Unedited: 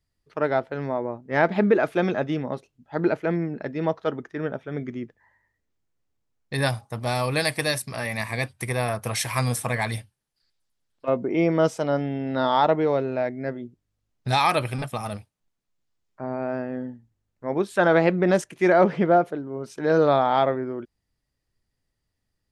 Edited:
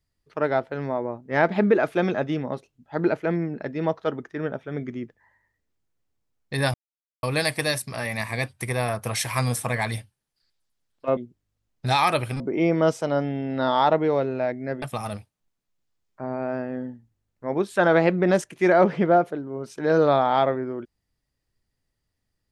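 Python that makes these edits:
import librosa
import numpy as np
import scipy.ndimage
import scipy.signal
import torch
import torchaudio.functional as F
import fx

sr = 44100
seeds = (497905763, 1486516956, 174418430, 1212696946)

y = fx.edit(x, sr, fx.silence(start_s=6.74, length_s=0.49),
    fx.move(start_s=13.59, length_s=1.23, to_s=11.17), tone=tone)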